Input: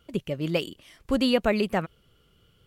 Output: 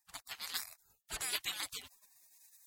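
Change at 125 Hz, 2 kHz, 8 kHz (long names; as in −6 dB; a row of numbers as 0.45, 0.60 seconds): −30.0, −10.0, +8.0 decibels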